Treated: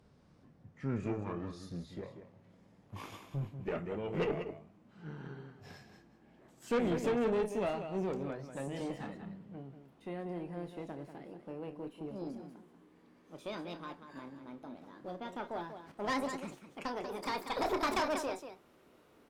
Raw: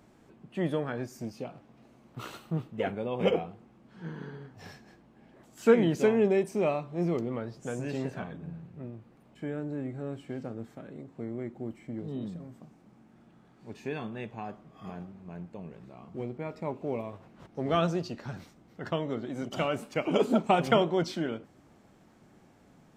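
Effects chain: speed glide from 66% -> 172%; loudspeakers at several distances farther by 10 m -11 dB, 65 m -10 dB; tube stage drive 23 dB, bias 0.5; gain -3.5 dB

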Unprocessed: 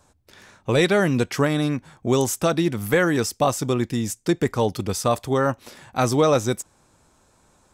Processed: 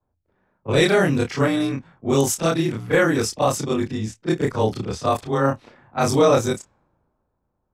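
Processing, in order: short-time reversal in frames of 73 ms; low-pass opened by the level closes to 970 Hz, open at -20 dBFS; three-band expander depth 40%; gain +4 dB

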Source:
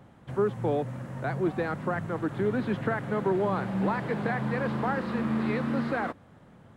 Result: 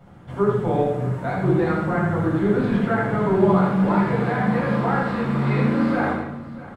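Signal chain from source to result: on a send: tapped delay 80/230/644 ms -5/-15.5/-17 dB; on the sum: shoebox room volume 750 m³, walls furnished, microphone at 7.1 m; gain -3.5 dB

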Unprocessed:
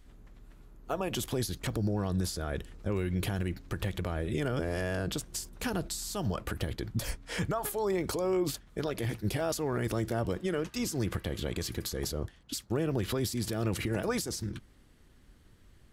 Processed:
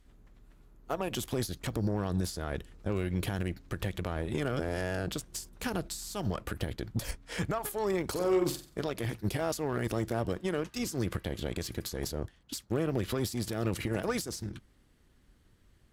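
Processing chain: 8.11–8.84 flutter echo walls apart 7.8 m, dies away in 0.4 s; added harmonics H 7 -25 dB, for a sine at -18 dBFS

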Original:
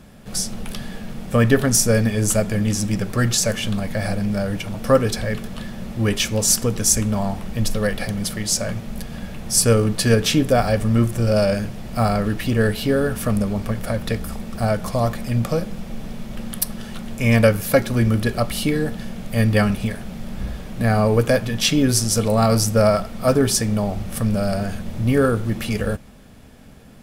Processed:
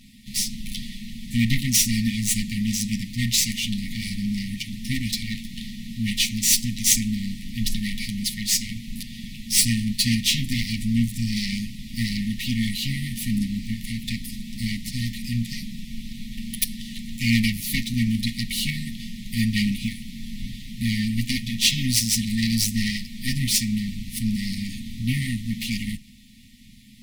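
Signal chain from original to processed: minimum comb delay 9 ms; FFT band-reject 290–1800 Hz; fifteen-band EQ 100 Hz -10 dB, 400 Hz -7 dB, 4000 Hz +6 dB

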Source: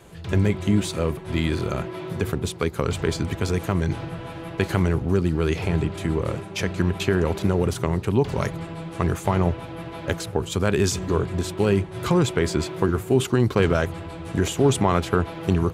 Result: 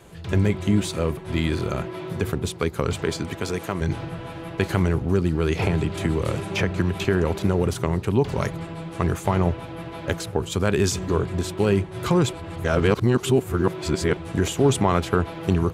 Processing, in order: 2.94–3.8 HPF 130 Hz -> 320 Hz 6 dB/oct; 5.59–7.05 three-band squash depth 100%; 12.33–14.17 reverse

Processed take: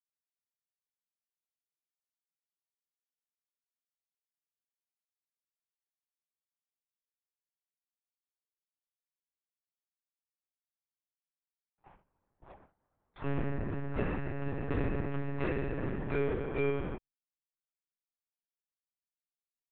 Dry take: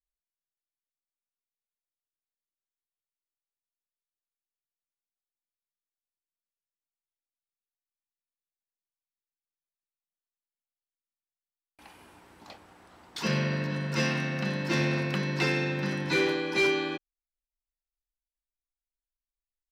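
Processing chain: LPF 1300 Hz 12 dB/oct; gate with hold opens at -44 dBFS; monotone LPC vocoder at 8 kHz 140 Hz; gain -3.5 dB

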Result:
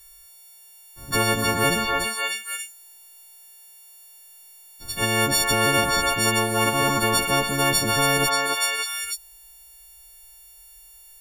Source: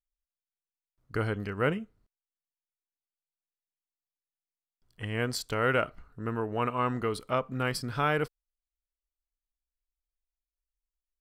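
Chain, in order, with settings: frequency quantiser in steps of 4 st; delay with a stepping band-pass 0.291 s, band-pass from 1200 Hz, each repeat 1.4 oct, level -1.5 dB; spectral compressor 4:1; gain +4 dB

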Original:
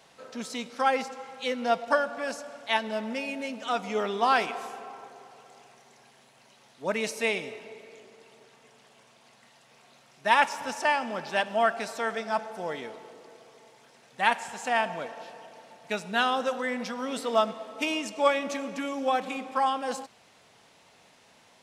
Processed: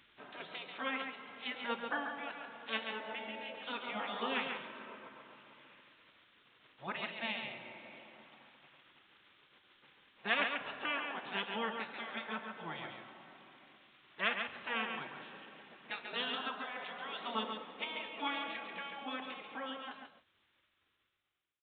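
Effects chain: ending faded out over 3.27 s; notches 60/120/180/240 Hz; spectral gate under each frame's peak -10 dB weak; in parallel at -0.5 dB: compressor, threshold -46 dBFS, peak gain reduction 22.5 dB; on the sum: echo 0.139 s -6 dB; on a send at -14.5 dB: reverb, pre-delay 27 ms; on the sum: downsampling 8000 Hz; gain -6 dB

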